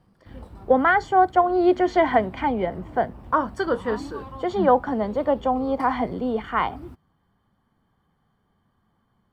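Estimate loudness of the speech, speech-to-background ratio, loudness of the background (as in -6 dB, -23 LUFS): -22.5 LUFS, 19.5 dB, -42.0 LUFS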